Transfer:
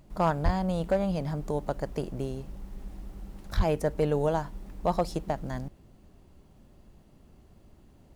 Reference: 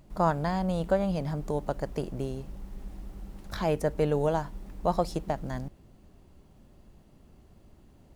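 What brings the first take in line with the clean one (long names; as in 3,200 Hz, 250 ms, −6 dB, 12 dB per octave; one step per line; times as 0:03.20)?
clipped peaks rebuilt −16.5 dBFS
0:00.44–0:00.56: high-pass filter 140 Hz 24 dB per octave
0:03.56–0:03.68: high-pass filter 140 Hz 24 dB per octave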